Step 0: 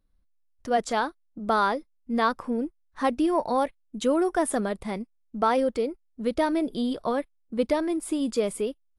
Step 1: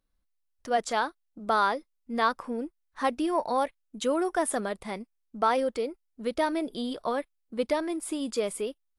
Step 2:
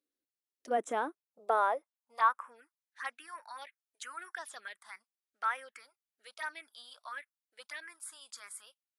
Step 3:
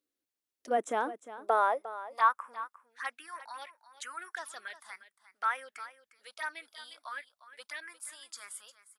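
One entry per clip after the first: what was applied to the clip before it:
low-shelf EQ 350 Hz −9 dB
high-pass filter sweep 300 Hz → 1,600 Hz, 0:00.98–0:02.67; phaser swept by the level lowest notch 160 Hz, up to 4,600 Hz, full sweep at −24.5 dBFS; level −6.5 dB
single-tap delay 354 ms −14.5 dB; level +2 dB

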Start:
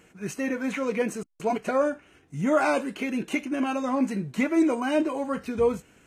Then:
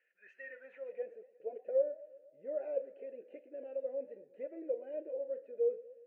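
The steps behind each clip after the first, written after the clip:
formant filter e
band-pass filter sweep 1,700 Hz → 480 Hz, 0:00.41–0:01.27
feedback echo with a swinging delay time 119 ms, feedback 60%, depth 126 cents, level −19 dB
level −2.5 dB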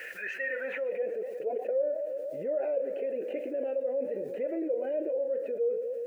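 envelope flattener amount 70%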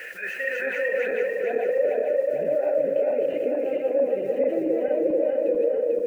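feedback delay that plays each chunk backwards 222 ms, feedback 71%, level 0 dB
level +4 dB

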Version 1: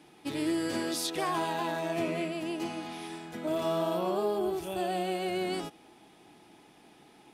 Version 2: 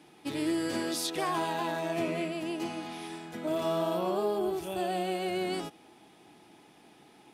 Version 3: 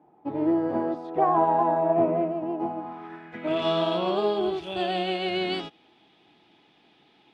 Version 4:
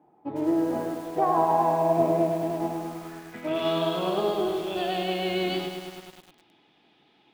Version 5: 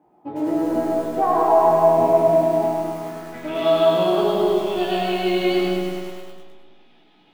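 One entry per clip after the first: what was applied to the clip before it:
high-pass filter 56 Hz
low-pass filter sweep 830 Hz → 3,500 Hz, 0:02.75–0:03.68; expander for the loud parts 1.5 to 1, over −47 dBFS; level +6.5 dB
feedback echo at a low word length 103 ms, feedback 80%, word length 7 bits, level −7.5 dB; level −2 dB
tuned comb filter 60 Hz, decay 0.17 s, harmonics all, mix 100%; comb and all-pass reverb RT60 1.5 s, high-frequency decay 0.3×, pre-delay 65 ms, DRR 0.5 dB; level +7.5 dB

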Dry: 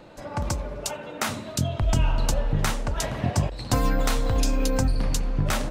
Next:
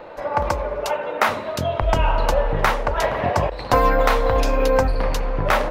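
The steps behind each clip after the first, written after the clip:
graphic EQ with 10 bands 125 Hz −6 dB, 250 Hz −4 dB, 500 Hz +9 dB, 1,000 Hz +8 dB, 2,000 Hz +6 dB, 8,000 Hz −11 dB
level +2.5 dB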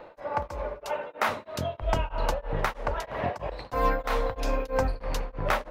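tremolo along a rectified sine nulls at 3.1 Hz
level −6.5 dB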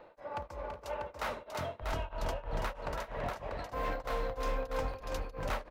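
hard clipping −22 dBFS, distortion −13 dB
on a send: multi-tap delay 332/368/641 ms −6.5/−13/−4.5 dB
on the sum: level −9 dB

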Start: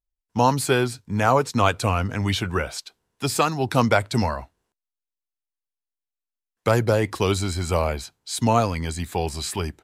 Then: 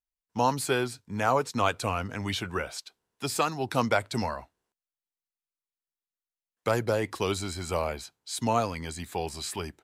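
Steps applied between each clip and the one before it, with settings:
low-shelf EQ 140 Hz −8.5 dB
level −5.5 dB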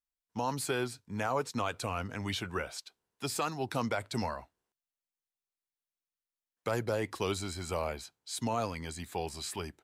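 brickwall limiter −17 dBFS, peak gain reduction 6.5 dB
level −4 dB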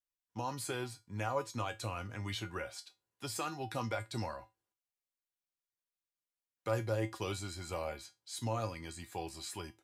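tuned comb filter 110 Hz, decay 0.2 s, harmonics odd, mix 80%
level +4 dB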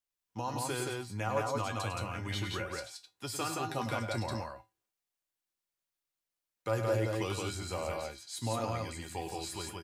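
loudspeakers that aren't time-aligned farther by 35 metres −9 dB, 59 metres −2 dB
level +1.5 dB

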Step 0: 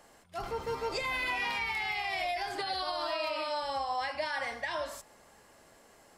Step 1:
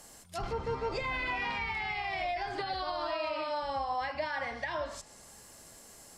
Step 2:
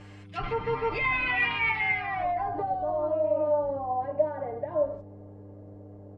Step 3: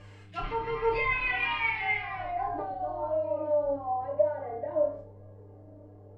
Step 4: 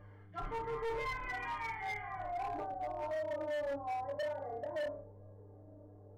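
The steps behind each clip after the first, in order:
treble cut that deepens with the level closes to 2,100 Hz, closed at −32.5 dBFS; bass and treble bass +7 dB, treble +14 dB
hum with harmonics 100 Hz, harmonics 5, −48 dBFS −8 dB per octave; comb filter 6.7 ms, depth 93%; low-pass filter sweep 2,500 Hz → 570 Hz, 0:01.75–0:02.77
flanger 0.95 Hz, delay 1.7 ms, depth 1.7 ms, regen +37%; flutter between parallel walls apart 4.9 metres, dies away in 0.37 s
Savitzky-Golay smoothing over 41 samples; hard clipping −29 dBFS, distortion −8 dB; level −5.5 dB

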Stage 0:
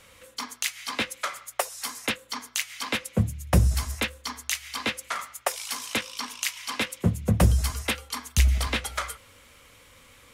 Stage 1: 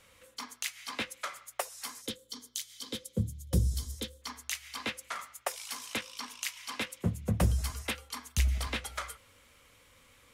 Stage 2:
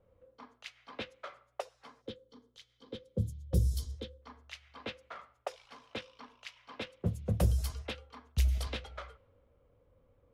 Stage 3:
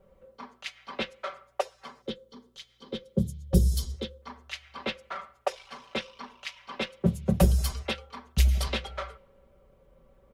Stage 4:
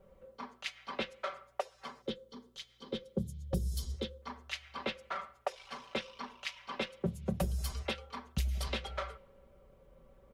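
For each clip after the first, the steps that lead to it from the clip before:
gain on a spectral selection 0:02.01–0:04.22, 550–3,000 Hz −14 dB; level −7.5 dB
low-pass that shuts in the quiet parts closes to 730 Hz, open at −26 dBFS; octave-band graphic EQ 250/500/1,000/2,000/8,000 Hz −6/+3/−6/−8/−6 dB
comb filter 5.2 ms, depth 82%; level +7 dB
downward compressor 4 to 1, threshold −31 dBFS, peak gain reduction 14 dB; level −1 dB

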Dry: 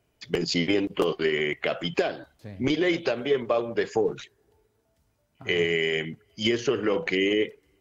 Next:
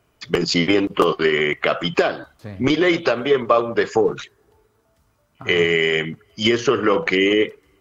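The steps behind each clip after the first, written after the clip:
parametric band 1,200 Hz +9 dB 0.57 octaves
level +6.5 dB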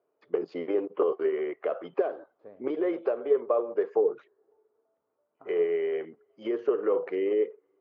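four-pole ladder band-pass 530 Hz, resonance 45%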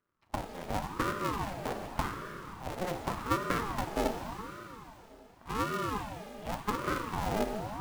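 sub-harmonics by changed cycles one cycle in 2, muted
four-comb reverb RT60 3.7 s, combs from 29 ms, DRR 4.5 dB
ring modulator whose carrier an LFO sweeps 490 Hz, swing 65%, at 0.87 Hz
level −1.5 dB

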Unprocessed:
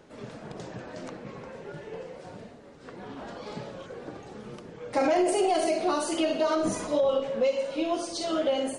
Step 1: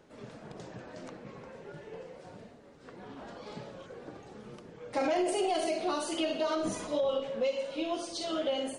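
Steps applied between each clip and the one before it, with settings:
dynamic equaliser 3,300 Hz, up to +5 dB, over −50 dBFS, Q 1.8
level −5.5 dB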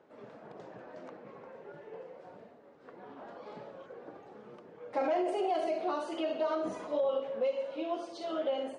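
resonant band-pass 720 Hz, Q 0.62

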